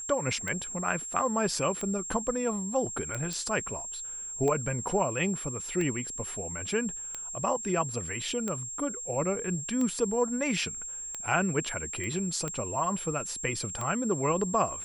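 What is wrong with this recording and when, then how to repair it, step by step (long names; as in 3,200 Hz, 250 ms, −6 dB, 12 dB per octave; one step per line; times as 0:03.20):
scratch tick 45 rpm −20 dBFS
whistle 7,500 Hz −36 dBFS
0:03.33: click
0:12.04: click −25 dBFS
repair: click removal
notch filter 7,500 Hz, Q 30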